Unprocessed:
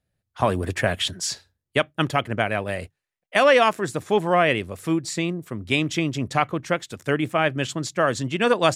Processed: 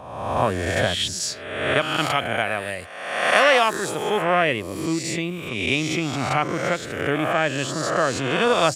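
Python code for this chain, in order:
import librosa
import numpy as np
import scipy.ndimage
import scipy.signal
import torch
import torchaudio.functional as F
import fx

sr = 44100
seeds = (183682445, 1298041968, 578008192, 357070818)

y = fx.spec_swells(x, sr, rise_s=1.12)
y = fx.tilt_eq(y, sr, slope=1.5, at=(1.81, 4.22))
y = F.gain(torch.from_numpy(y), -2.5).numpy()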